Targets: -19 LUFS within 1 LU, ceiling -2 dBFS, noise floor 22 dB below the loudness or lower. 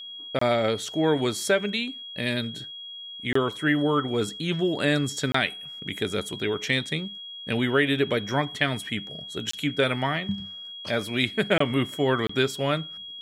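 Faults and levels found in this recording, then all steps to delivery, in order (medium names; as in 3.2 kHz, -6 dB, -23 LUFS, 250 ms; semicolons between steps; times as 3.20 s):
dropouts 6; longest dropout 24 ms; steady tone 3.3 kHz; tone level -37 dBFS; loudness -26.0 LUFS; peak level -8.0 dBFS; loudness target -19.0 LUFS
-> interpolate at 0.39/3.33/5.32/9.51/11.58/12.27 s, 24 ms; band-stop 3.3 kHz, Q 30; trim +7 dB; peak limiter -2 dBFS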